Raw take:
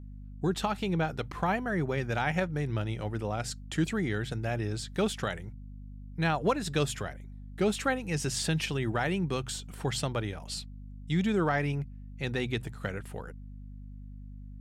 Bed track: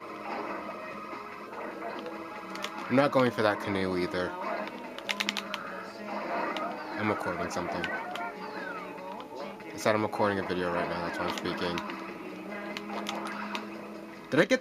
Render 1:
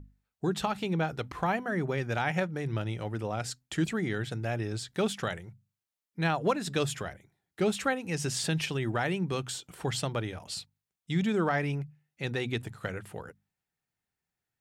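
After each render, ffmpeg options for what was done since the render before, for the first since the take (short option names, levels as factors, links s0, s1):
-af "bandreject=f=50:t=h:w=6,bandreject=f=100:t=h:w=6,bandreject=f=150:t=h:w=6,bandreject=f=200:t=h:w=6,bandreject=f=250:t=h:w=6"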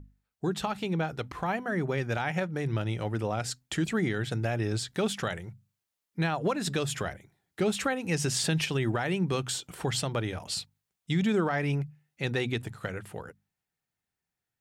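-af "dynaudnorm=f=590:g=9:m=1.68,alimiter=limit=0.119:level=0:latency=1:release=157"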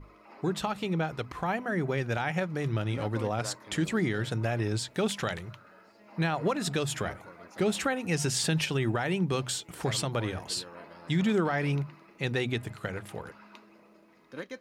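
-filter_complex "[1:a]volume=0.15[s0];[0:a][s0]amix=inputs=2:normalize=0"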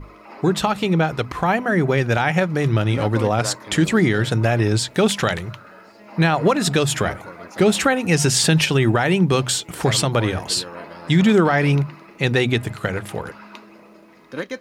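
-af "volume=3.76"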